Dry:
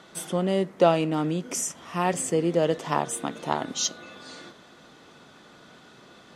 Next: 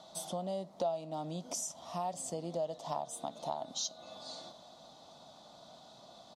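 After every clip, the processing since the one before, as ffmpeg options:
ffmpeg -i in.wav -af "firequalizer=gain_entry='entry(220,0);entry(420,-8);entry(640,13);entry(1600,-12);entry(2700,-6);entry(3800,9);entry(8300,2)':delay=0.05:min_phase=1,acompressor=threshold=-29dB:ratio=3,volume=-8dB" out.wav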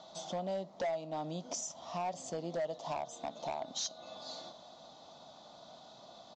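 ffmpeg -i in.wav -af "bass=frequency=250:gain=-3,treble=frequency=4000:gain=-2,aresample=16000,volume=32.5dB,asoftclip=hard,volume=-32.5dB,aresample=44100,volume=1.5dB" out.wav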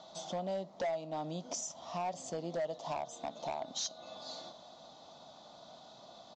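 ffmpeg -i in.wav -af anull out.wav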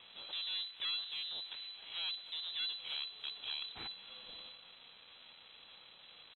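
ffmpeg -i in.wav -filter_complex "[0:a]acrusher=bits=6:dc=4:mix=0:aa=0.000001,lowpass=frequency=3400:width_type=q:width=0.5098,lowpass=frequency=3400:width_type=q:width=0.6013,lowpass=frequency=3400:width_type=q:width=0.9,lowpass=frequency=3400:width_type=q:width=2.563,afreqshift=-4000,asplit=2[link_01][link_02];[link_02]adelay=290,highpass=300,lowpass=3400,asoftclip=type=hard:threshold=-38dB,volume=-23dB[link_03];[link_01][link_03]amix=inputs=2:normalize=0" out.wav

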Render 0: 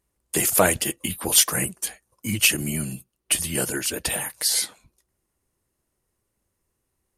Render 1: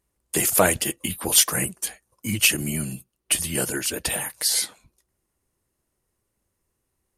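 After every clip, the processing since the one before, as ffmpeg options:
ffmpeg -i in.wav -af anull out.wav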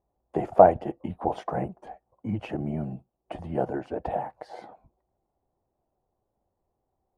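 ffmpeg -i in.wav -af "lowpass=frequency=750:width_type=q:width=4.9,volume=-3dB" out.wav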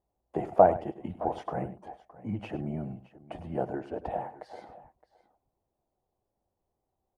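ffmpeg -i in.wav -af "aecho=1:1:101|616:0.188|0.112,volume=-4dB" out.wav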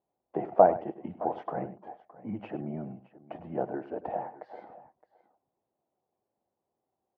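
ffmpeg -i in.wav -af "highpass=170,lowpass=2100" out.wav

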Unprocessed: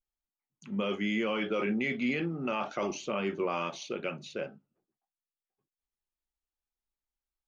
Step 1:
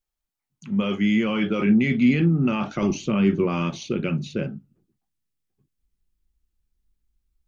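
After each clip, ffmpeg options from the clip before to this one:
ffmpeg -i in.wav -af "asubboost=boost=11:cutoff=210,volume=5.5dB" out.wav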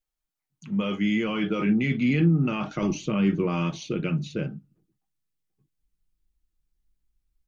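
ffmpeg -i in.wav -af "aecho=1:1:6.4:0.37,volume=-3dB" out.wav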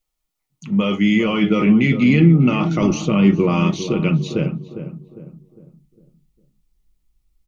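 ffmpeg -i in.wav -filter_complex "[0:a]bandreject=frequency=1600:width=5.8,asplit=2[link_01][link_02];[link_02]adelay=404,lowpass=frequency=1100:poles=1,volume=-10dB,asplit=2[link_03][link_04];[link_04]adelay=404,lowpass=frequency=1100:poles=1,volume=0.43,asplit=2[link_05][link_06];[link_06]adelay=404,lowpass=frequency=1100:poles=1,volume=0.43,asplit=2[link_07][link_08];[link_08]adelay=404,lowpass=frequency=1100:poles=1,volume=0.43,asplit=2[link_09][link_10];[link_10]adelay=404,lowpass=frequency=1100:poles=1,volume=0.43[link_11];[link_03][link_05][link_07][link_09][link_11]amix=inputs=5:normalize=0[link_12];[link_01][link_12]amix=inputs=2:normalize=0,volume=8.5dB" out.wav

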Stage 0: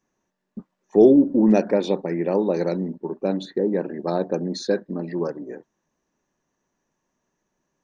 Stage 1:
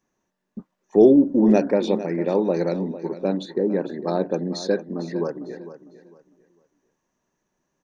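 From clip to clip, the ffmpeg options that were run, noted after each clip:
ffmpeg -i in.wav -af "aecho=1:1:452|904|1356:0.2|0.0519|0.0135" out.wav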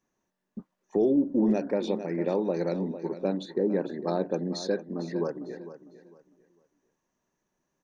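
ffmpeg -i in.wav -af "alimiter=limit=-11.5dB:level=0:latency=1:release=331,volume=-4dB" out.wav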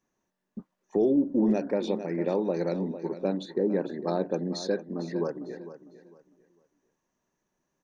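ffmpeg -i in.wav -af anull out.wav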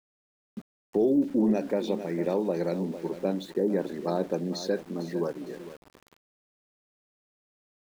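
ffmpeg -i in.wav -af "aeval=exprs='val(0)*gte(abs(val(0)),0.00501)':channel_layout=same" out.wav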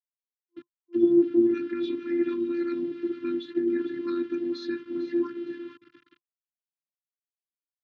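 ffmpeg -i in.wav -af "afftfilt=real='re*(1-between(b*sr/4096,380,1100))':imag='im*(1-between(b*sr/4096,380,1100))':win_size=4096:overlap=0.75,afftfilt=real='hypot(re,im)*cos(PI*b)':imag='0':win_size=512:overlap=0.75,highpass=frequency=120:width=0.5412,highpass=frequency=120:width=1.3066,equalizer=frequency=150:width_type=q:width=4:gain=7,equalizer=frequency=430:width_type=q:width=4:gain=-4,equalizer=frequency=620:width_type=q:width=4:gain=-7,equalizer=frequency=2200:width_type=q:width=4:gain=-5,lowpass=frequency=3400:width=0.5412,lowpass=frequency=3400:width=1.3066,volume=8dB" out.wav

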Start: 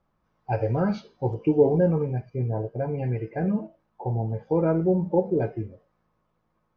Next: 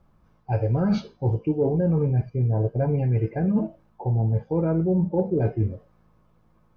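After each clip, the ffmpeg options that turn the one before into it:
ffmpeg -i in.wav -af "lowshelf=frequency=230:gain=10,bandreject=frequency=1900:width=21,areverse,acompressor=threshold=-25dB:ratio=10,areverse,volume=6dB" out.wav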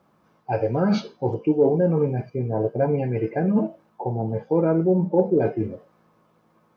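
ffmpeg -i in.wav -af "highpass=230,volume=5.5dB" out.wav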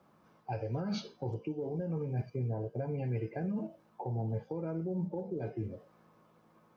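ffmpeg -i in.wav -filter_complex "[0:a]alimiter=limit=-16.5dB:level=0:latency=1:release=170,acrossover=split=130|3000[link_01][link_02][link_03];[link_02]acompressor=threshold=-41dB:ratio=2[link_04];[link_01][link_04][link_03]amix=inputs=3:normalize=0,volume=-3dB" out.wav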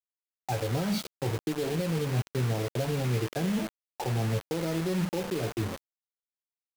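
ffmpeg -i in.wav -af "acrusher=bits=6:mix=0:aa=0.000001,volume=6dB" out.wav

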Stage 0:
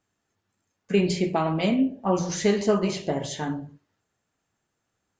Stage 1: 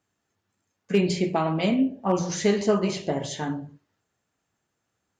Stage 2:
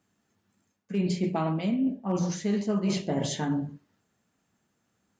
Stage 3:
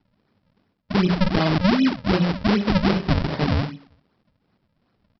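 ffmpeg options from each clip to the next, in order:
ffmpeg -i in.wav -af "asoftclip=type=hard:threshold=-12dB,highpass=46" out.wav
ffmpeg -i in.wav -af "equalizer=frequency=210:width_type=o:width=0.76:gain=9,areverse,acompressor=threshold=-26dB:ratio=10,areverse,volume=2dB" out.wav
ffmpeg -i in.wav -af "aecho=1:1:117|234|351:0.0631|0.0297|0.0139,aresample=11025,acrusher=samples=17:mix=1:aa=0.000001:lfo=1:lforange=27.2:lforate=2.6,aresample=44100,volume=7.5dB" out.wav

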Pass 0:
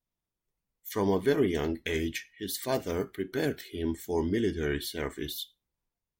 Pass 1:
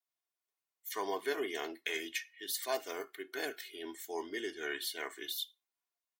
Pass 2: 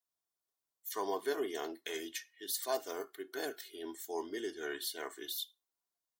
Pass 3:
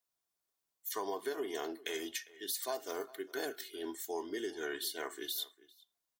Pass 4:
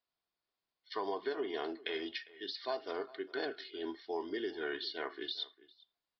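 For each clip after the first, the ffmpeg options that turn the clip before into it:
ffmpeg -i in.wav -af "highpass=710,aecho=1:1:2.8:0.48,volume=-2.5dB" out.wav
ffmpeg -i in.wav -af "equalizer=frequency=2300:width=1.7:gain=-11,volume=1dB" out.wav
ffmpeg -i in.wav -filter_complex "[0:a]acompressor=threshold=-37dB:ratio=5,asplit=2[link_01][link_02];[link_02]adelay=402.3,volume=-20dB,highshelf=frequency=4000:gain=-9.05[link_03];[link_01][link_03]amix=inputs=2:normalize=0,volume=3dB" out.wav
ffmpeg -i in.wav -af "aresample=11025,aresample=44100,volume=1dB" out.wav

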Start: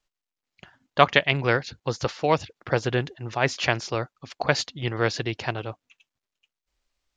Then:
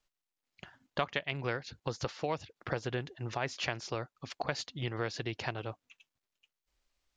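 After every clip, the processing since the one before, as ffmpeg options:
ffmpeg -i in.wav -af "acompressor=threshold=-32dB:ratio=3,volume=-2dB" out.wav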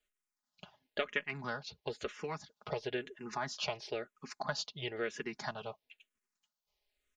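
ffmpeg -i in.wav -filter_complex "[0:a]lowshelf=frequency=140:gain=-7,aecho=1:1:4.8:0.64,asplit=2[link_01][link_02];[link_02]afreqshift=-1[link_03];[link_01][link_03]amix=inputs=2:normalize=1" out.wav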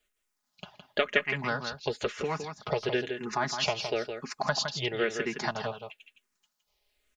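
ffmpeg -i in.wav -af "aecho=1:1:164:0.422,volume=8dB" out.wav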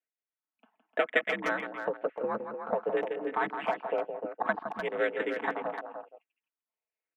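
ffmpeg -i in.wav -filter_complex "[0:a]highpass=frequency=160:width_type=q:width=0.5412,highpass=frequency=160:width_type=q:width=1.307,lowpass=frequency=2400:width_type=q:width=0.5176,lowpass=frequency=2400:width_type=q:width=0.7071,lowpass=frequency=2400:width_type=q:width=1.932,afreqshift=57,afwtdn=0.0178,asplit=2[link_01][link_02];[link_02]adelay=300,highpass=300,lowpass=3400,asoftclip=type=hard:threshold=-21dB,volume=-7dB[link_03];[link_01][link_03]amix=inputs=2:normalize=0" out.wav

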